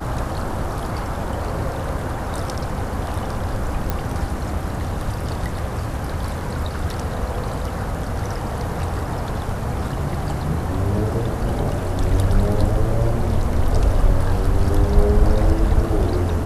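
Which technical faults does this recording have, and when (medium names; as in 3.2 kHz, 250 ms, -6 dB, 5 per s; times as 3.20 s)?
3.90 s: pop -8 dBFS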